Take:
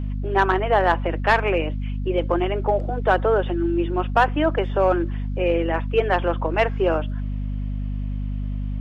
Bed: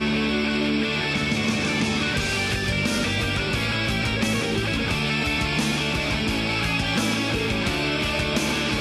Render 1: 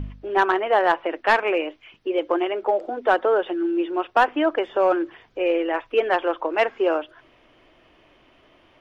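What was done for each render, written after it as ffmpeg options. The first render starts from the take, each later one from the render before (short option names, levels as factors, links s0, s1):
-af "bandreject=f=50:t=h:w=4,bandreject=f=100:t=h:w=4,bandreject=f=150:t=h:w=4,bandreject=f=200:t=h:w=4,bandreject=f=250:t=h:w=4"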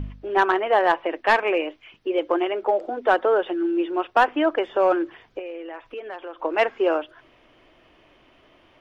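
-filter_complex "[0:a]asettb=1/sr,asplit=3[s0][s1][s2];[s0]atrim=end=0.724[s3];[s1]atrim=start=0.72:end=1.67,asetpts=PTS-STARTPTS,afade=t=in:d=0.004:c=qsin,afade=t=out:st=0.946:d=0.004:c=qsin,bandreject=f=1400:w=11[s4];[s2]atrim=start=1.666[s5];[s3][s4]acrossfade=d=0.004:c1=hsin:c2=qsin[s6];[s6][s5]acrossfade=d=0.004:c1=qsin:c2=hsin,asettb=1/sr,asplit=3[s7][s8][s9];[s7]atrim=end=5.394[s10];[s8]atrim=start=5.39:end=6.43,asetpts=PTS-STARTPTS,afade=t=in:d=0.004:c=qsin,afade=t=out:st=1.036:d=0.004:c=qsin,acompressor=threshold=0.0158:ratio=3:attack=3.2:release=140:knee=1:detection=peak[s11];[s9]atrim=start=6.426[s12];[s10][s11]acrossfade=d=0.004:c1=hsin:c2=qsin[s13];[s13][s12]acrossfade=d=0.004:c1=qsin:c2=hsin"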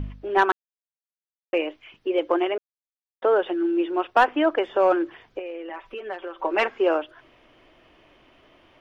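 -filter_complex "[0:a]asettb=1/sr,asplit=3[s0][s1][s2];[s0]atrim=end=5.694[s3];[s1]atrim=start=5.69:end=6.68,asetpts=PTS-STARTPTS,afade=t=in:d=0.004:c=qsin,afade=t=out:st=0.986:d=0.004:c=qsin,aecho=1:1:5.2:0.65,atrim=end_sample=43659[s4];[s2]atrim=start=6.676[s5];[s3][s4]acrossfade=d=0.004:c1=hsin:c2=qsin[s6];[s6][s5]acrossfade=d=0.004:c1=qsin:c2=hsin,asplit=5[s7][s8][s9][s10][s11];[s7]atrim=end=0.52,asetpts=PTS-STARTPTS,afade=t=out:st=0.516:d=0.004:c=hsin[s12];[s8]atrim=start=0.52:end=1.53,asetpts=PTS-STARTPTS,volume=0[s13];[s9]atrim=start=1.53:end=2.58,asetpts=PTS-STARTPTS,afade=t=in:d=0.004:c=hsin,afade=t=out:st=1.046:d=0.004:c=hsin[s14];[s10]atrim=start=2.58:end=3.22,asetpts=PTS-STARTPTS,volume=0[s15];[s11]atrim=start=3.22,asetpts=PTS-STARTPTS,afade=t=in:d=0.004:c=hsin[s16];[s12][s13][s14][s15][s16]concat=n=5:v=0:a=1"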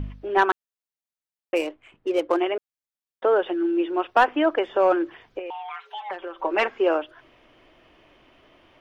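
-filter_complex "[0:a]asplit=3[s0][s1][s2];[s0]afade=t=out:st=1.55:d=0.02[s3];[s1]adynamicsmooth=sensitivity=7.5:basefreq=1400,afade=t=in:st=1.55:d=0.02,afade=t=out:st=2.36:d=0.02[s4];[s2]afade=t=in:st=2.36:d=0.02[s5];[s3][s4][s5]amix=inputs=3:normalize=0,asettb=1/sr,asplit=3[s6][s7][s8];[s6]atrim=end=5.504[s9];[s7]atrim=start=5.5:end=6.11,asetpts=PTS-STARTPTS,afade=t=in:d=0.004:c=qsin,afade=t=out:st=0.606:d=0.004:c=qsin,afreqshift=400[s10];[s8]atrim=start=6.106[s11];[s9][s10]acrossfade=d=0.004:c1=hsin:c2=qsin[s12];[s12][s11]acrossfade=d=0.004:c1=qsin:c2=hsin"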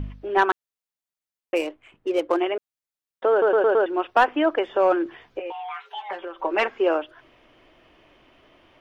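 -filter_complex "[0:a]asettb=1/sr,asplit=3[s0][s1][s2];[s0]atrim=end=5.044[s3];[s1]atrim=start=5.04:end=6.25,asetpts=PTS-STARTPTS,afade=t=in:d=0.004:c=qsin,afade=t=out:st=1.206:d=0.004:c=qsin,asplit=2[s4][s5];[s5]adelay=15,volume=0.531[s6];[s4][s6]amix=inputs=2:normalize=0,atrim=end_sample=53361[s7];[s2]atrim=start=6.246[s8];[s3][s7]acrossfade=d=0.004:c1=hsin:c2=qsin[s9];[s9][s8]acrossfade=d=0.004:c1=qsin:c2=hsin,asplit=6[s10][s11][s12][s13][s14][s15];[s10]atrim=end=3.422[s16];[s11]atrim=start=3.308:end=3.422[s17];[s12]atrim=start=3.308:end=3.422[s18];[s13]atrim=start=3.308:end=3.422[s19];[s14]atrim=start=3.308:end=3.422[s20];[s15]atrim=start=3.858[s21];[s16][s17]acrossfade=d=0.004:c1=hsin:c2=hsin[s22];[s22][s18]acrossfade=d=0.004:c1=hsin:c2=hsin[s23];[s23][s19]acrossfade=d=0.004:c1=hsin:c2=hsin[s24];[s24][s20]acrossfade=d=0.004:c1=hsin:c2=hsin[s25];[s25][s21]acrossfade=d=0.004:c1=hsin:c2=hsin"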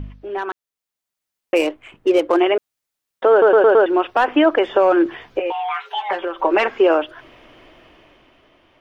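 -af "alimiter=limit=0.15:level=0:latency=1:release=70,dynaudnorm=f=120:g=17:m=3.16"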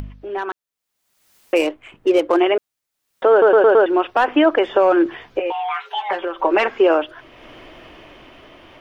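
-af "acompressor=mode=upward:threshold=0.0224:ratio=2.5"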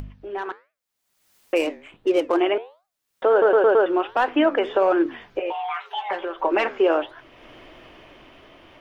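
-af "flanger=delay=6.7:depth=8:regen=-83:speed=1.4:shape=triangular"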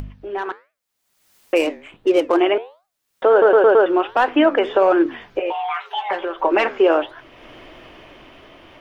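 -af "volume=1.58"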